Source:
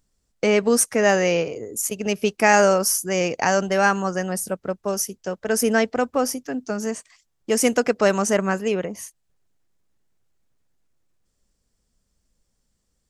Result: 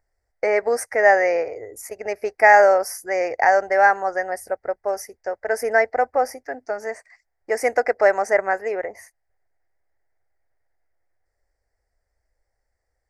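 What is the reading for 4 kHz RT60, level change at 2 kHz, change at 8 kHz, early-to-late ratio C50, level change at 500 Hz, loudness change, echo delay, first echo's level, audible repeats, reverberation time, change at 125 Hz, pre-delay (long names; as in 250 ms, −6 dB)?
no reverb audible, +3.5 dB, −12.5 dB, no reverb audible, +1.5 dB, +1.5 dB, no echo audible, no echo audible, no echo audible, no reverb audible, below −20 dB, no reverb audible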